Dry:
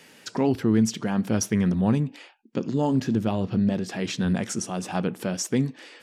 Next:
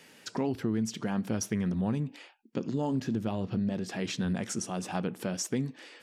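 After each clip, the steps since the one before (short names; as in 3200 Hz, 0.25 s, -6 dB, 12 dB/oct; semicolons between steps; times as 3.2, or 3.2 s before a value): compressor 3:1, threshold -23 dBFS, peak gain reduction 6.5 dB; gain -4 dB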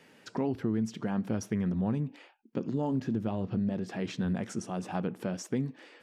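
high shelf 2900 Hz -11 dB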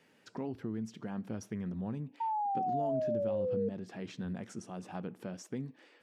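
painted sound fall, 2.2–3.69, 460–920 Hz -25 dBFS; gain -8 dB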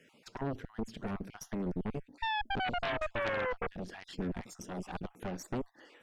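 random spectral dropouts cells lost 36%; added harmonics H 3 -7 dB, 5 -8 dB, 8 -11 dB, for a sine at -23.5 dBFS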